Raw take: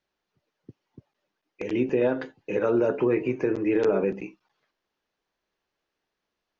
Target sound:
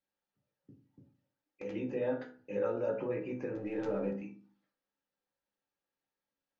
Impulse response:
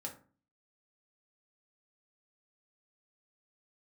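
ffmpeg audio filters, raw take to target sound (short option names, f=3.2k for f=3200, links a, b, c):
-filter_complex "[0:a]asettb=1/sr,asplit=3[a][b][c];[a]atrim=end=3.554[d];[b]atrim=start=3.55:end=4.14,asetpts=PTS-STARTPTS,afade=t=in:d=0.004:c=qsin,afade=t=out:st=0.586:d=0.004:c=qsin,aeval=exprs='if(lt(val(0),0),0.708*val(0),val(0))':c=same[e];[c]atrim=start=4.136[f];[d][e]acrossfade=d=0.004:c1=hsin:c2=qsin[g];[g][f]acrossfade=d=0.004:c1=qsin:c2=hsin[h];[1:a]atrim=start_sample=2205[i];[h][i]afir=irnorm=-1:irlink=0,volume=-9dB"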